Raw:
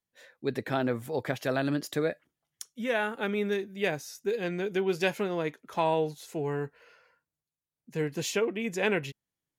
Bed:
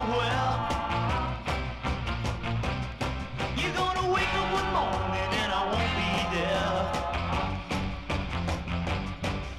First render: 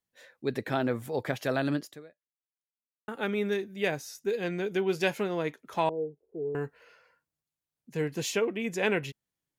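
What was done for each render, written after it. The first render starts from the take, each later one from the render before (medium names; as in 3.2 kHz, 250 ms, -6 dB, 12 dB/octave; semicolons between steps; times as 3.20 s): 1.76–3.08 s: fade out exponential; 5.89–6.55 s: four-pole ladder low-pass 470 Hz, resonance 65%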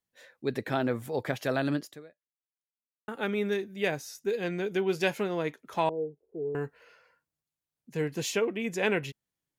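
no audible change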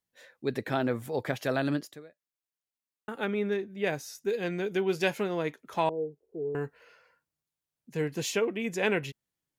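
3.24–3.86 s: treble shelf 5 kHz -> 3.2 kHz -12 dB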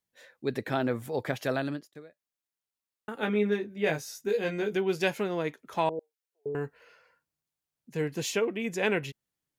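1.51–1.95 s: fade out, to -23.5 dB; 3.20–4.76 s: doubling 19 ms -3 dB; 5.99–6.46 s: high-pass 1.4 kHz 24 dB/octave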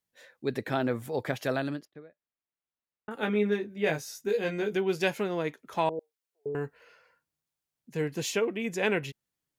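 1.85–3.11 s: distance through air 340 m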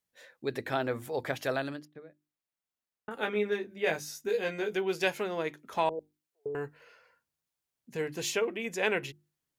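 dynamic bell 190 Hz, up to -7 dB, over -44 dBFS, Q 0.88; hum notches 50/100/150/200/250/300/350 Hz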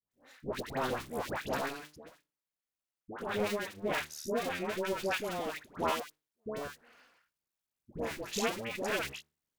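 cycle switcher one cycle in 2, muted; phase dispersion highs, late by 109 ms, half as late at 1 kHz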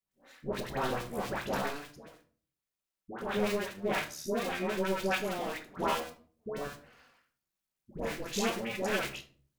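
simulated room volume 350 m³, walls furnished, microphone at 1.1 m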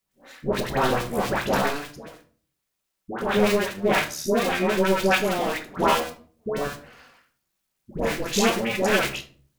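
trim +10.5 dB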